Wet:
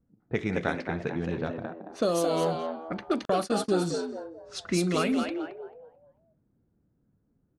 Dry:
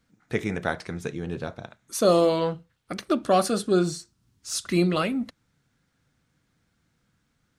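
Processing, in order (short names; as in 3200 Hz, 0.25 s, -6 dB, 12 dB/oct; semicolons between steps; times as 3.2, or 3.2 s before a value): compressor 16:1, threshold -22 dBFS, peak gain reduction 9 dB; frequency-shifting echo 0.22 s, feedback 41%, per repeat +79 Hz, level -6 dB; low-pass opened by the level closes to 500 Hz, open at -21.5 dBFS; 3.25–3.75 gate -29 dBFS, range -49 dB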